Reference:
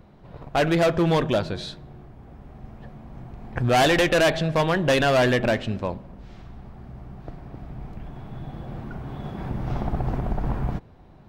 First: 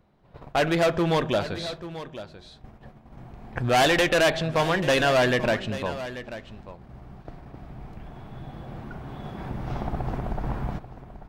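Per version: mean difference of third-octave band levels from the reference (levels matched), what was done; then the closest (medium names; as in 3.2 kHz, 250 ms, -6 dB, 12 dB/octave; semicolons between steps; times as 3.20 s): 3.0 dB: gate -40 dBFS, range -9 dB; bass shelf 430 Hz -4.5 dB; on a send: delay 838 ms -13.5 dB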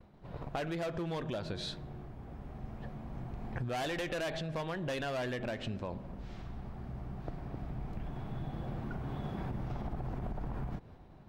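6.5 dB: expander -45 dBFS; peak limiter -19.5 dBFS, peak gain reduction 6.5 dB; compression 10:1, threshold -32 dBFS, peak gain reduction 10.5 dB; trim -2 dB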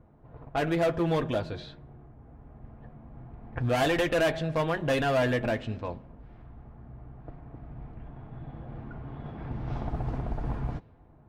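2.0 dB: level-controlled noise filter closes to 1.3 kHz, open at -19 dBFS; comb of notches 190 Hz; dynamic bell 5.2 kHz, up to -5 dB, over -41 dBFS, Q 0.75; trim -5 dB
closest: third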